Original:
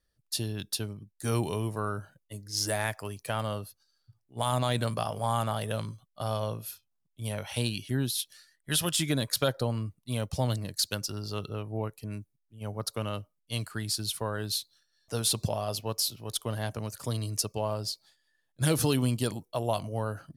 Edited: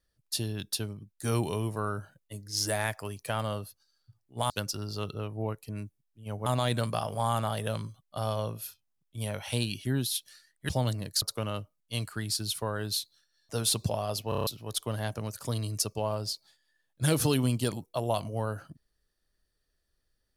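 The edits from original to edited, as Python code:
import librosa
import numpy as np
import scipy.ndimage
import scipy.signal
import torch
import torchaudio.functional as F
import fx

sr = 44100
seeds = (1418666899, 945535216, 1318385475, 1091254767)

y = fx.edit(x, sr, fx.cut(start_s=8.73, length_s=1.59),
    fx.move(start_s=10.85, length_s=1.96, to_s=4.5),
    fx.stutter_over(start_s=15.88, slice_s=0.03, count=6), tone=tone)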